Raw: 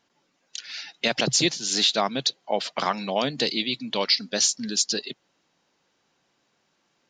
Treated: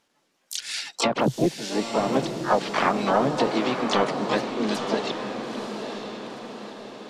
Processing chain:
leveller curve on the samples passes 1
pitch-shifted copies added +3 semitones −8 dB, +7 semitones −6 dB, +12 semitones −5 dB
treble cut that deepens with the level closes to 590 Hz, closed at −13.5 dBFS
on a send: feedback delay with all-pass diffusion 930 ms, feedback 52%, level −6.5 dB

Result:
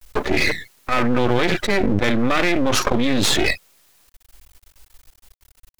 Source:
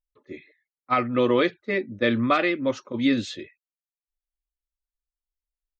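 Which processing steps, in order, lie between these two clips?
half-wave rectification
envelope flattener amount 100%
level +3 dB

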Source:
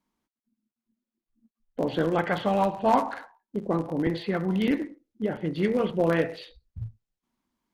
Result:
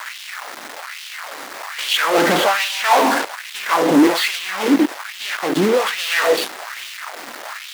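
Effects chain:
0:04.30–0:05.85: downward compressor 16 to 1, threshold −33 dBFS, peak gain reduction 14.5 dB
fuzz pedal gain 48 dB, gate −43 dBFS
noise in a band 560–2,100 Hz −33 dBFS
bit reduction 5 bits
auto-filter high-pass sine 1.2 Hz 250–3,100 Hz
level −2 dB

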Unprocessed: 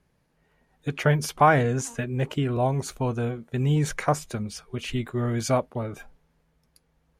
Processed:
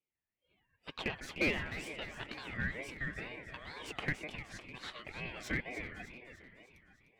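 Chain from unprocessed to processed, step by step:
phase distortion by the signal itself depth 0.12 ms
high-pass filter 260 Hz 24 dB per octave
noise reduction from a noise print of the clip's start 17 dB
low-pass filter 1,500 Hz 6 dB per octave
low shelf with overshoot 640 Hz −14 dB, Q 3
downward compressor 1.5 to 1, threshold −37 dBFS, peak gain reduction 9.5 dB
hard clipping −22.5 dBFS, distortion −12 dB
delay that swaps between a low-pass and a high-pass 151 ms, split 970 Hz, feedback 74%, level −7 dB
ring modulator whose carrier an LFO sweeps 1,100 Hz, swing 25%, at 2.1 Hz
level −1 dB

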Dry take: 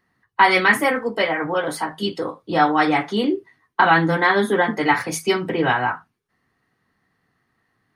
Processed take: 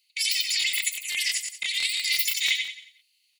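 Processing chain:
parametric band 7,600 Hz +9 dB 1.4 octaves
compressor whose output falls as the input rises −20 dBFS, ratio −1
Chebyshev high-pass with heavy ripple 860 Hz, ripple 3 dB
on a send: repeating echo 211 ms, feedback 40%, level −5 dB
on the sum: wrong playback speed 33 rpm record played at 78 rpm
regular buffer underruns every 0.17 s, samples 1,024, repeat, from 0:00.59

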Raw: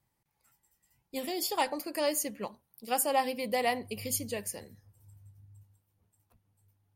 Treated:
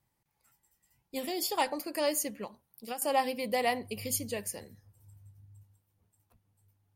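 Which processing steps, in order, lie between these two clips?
0:02.36–0:03.02: downward compressor 12 to 1, threshold −35 dBFS, peak gain reduction 11 dB

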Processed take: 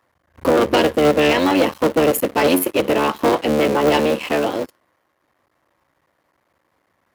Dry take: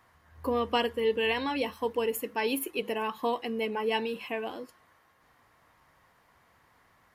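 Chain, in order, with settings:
sub-harmonics by changed cycles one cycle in 3, muted
hollow resonant body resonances 320/550 Hz, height 8 dB, ringing for 25 ms
leveller curve on the samples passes 3
high-pass filter 57 Hz
level +3.5 dB

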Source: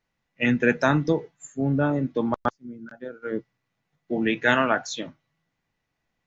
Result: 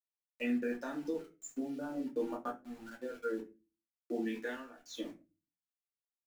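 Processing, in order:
noise reduction from a noise print of the clip's start 7 dB
downward compressor 12 to 1, threshold −33 dBFS, peak gain reduction 19 dB
four-pole ladder high-pass 230 Hz, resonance 40%
centre clipping without the shift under −55 dBFS
0:02.18–0:02.62: double-tracking delay 15 ms −3.5 dB
0:04.46–0:05.01: duck −15 dB, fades 0.24 s
convolution reverb RT60 0.30 s, pre-delay 3 ms, DRR −2 dB

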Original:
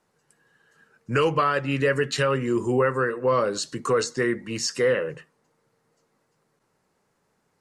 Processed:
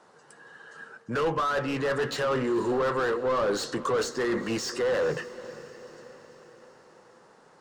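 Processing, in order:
downsampling to 22,050 Hz
reversed playback
downward compressor 6 to 1, threshold −30 dBFS, peak gain reduction 12.5 dB
reversed playback
mid-hump overdrive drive 25 dB, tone 2,000 Hz, clips at −17.5 dBFS
parametric band 2,300 Hz −7.5 dB 0.67 octaves
on a send: feedback delay with all-pass diffusion 495 ms, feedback 54%, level −16 dB

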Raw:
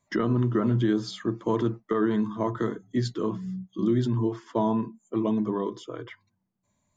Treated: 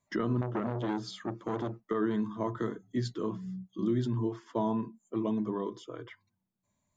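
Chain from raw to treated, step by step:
0:00.41–0:01.80: saturating transformer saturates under 650 Hz
level −5.5 dB

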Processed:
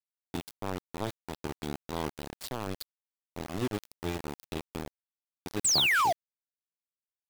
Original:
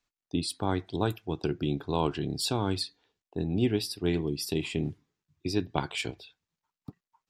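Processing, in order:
sound drawn into the spectrogram fall, 0:05.64–0:06.13, 620–8,700 Hz −19 dBFS
centre clipping without the shift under −24.5 dBFS
level −5.5 dB

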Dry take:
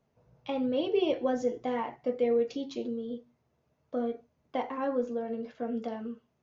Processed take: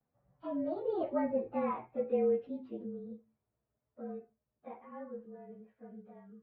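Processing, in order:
partials spread apart or drawn together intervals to 109%
source passing by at 0:01.55, 33 m/s, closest 24 metres
low-pass filter 2,200 Hz 24 dB per octave

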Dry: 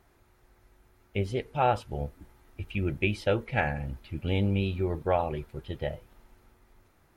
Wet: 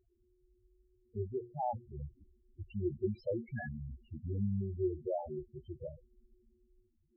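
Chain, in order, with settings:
0:01.18–0:02.63: mains-hum notches 60/120/180/240/300/360 Hz
hollow resonant body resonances 230/360/1,200 Hz, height 8 dB, ringing for 95 ms
spectral peaks only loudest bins 4
level −7.5 dB

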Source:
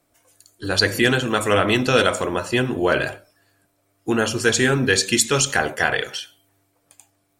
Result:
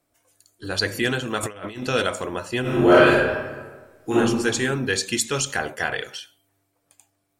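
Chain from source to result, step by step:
0:01.43–0:01.84: compressor whose output falls as the input rises −25 dBFS, ratio −0.5
0:02.61–0:04.15: thrown reverb, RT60 1.4 s, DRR −11 dB
level −5.5 dB

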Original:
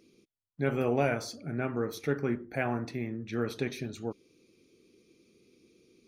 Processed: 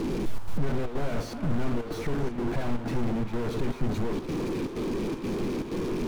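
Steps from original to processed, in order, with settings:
sign of each sample alone
parametric band 64 Hz −11 dB 1.3 octaves
square-wave tremolo 2.1 Hz, depth 60%, duty 80%
spectral tilt −4 dB per octave
echo through a band-pass that steps 327 ms, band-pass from 1,100 Hz, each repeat 1.4 octaves, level −5.5 dB

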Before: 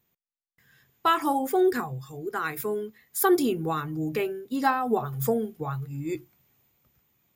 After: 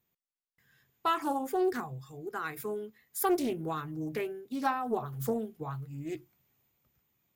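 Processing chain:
highs frequency-modulated by the lows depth 0.27 ms
level −6.5 dB

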